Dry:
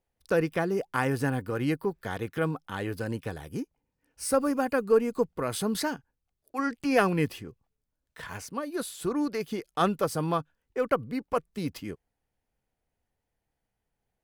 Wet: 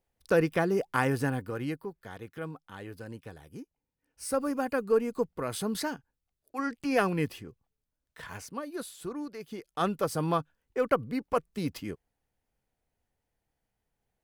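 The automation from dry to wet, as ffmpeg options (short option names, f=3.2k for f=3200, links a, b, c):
-af "volume=19dB,afade=t=out:st=0.93:d=0.97:silence=0.281838,afade=t=in:st=3.62:d=1.05:silence=0.446684,afade=t=out:st=8.49:d=0.86:silence=0.398107,afade=t=in:st=9.35:d=0.96:silence=0.281838"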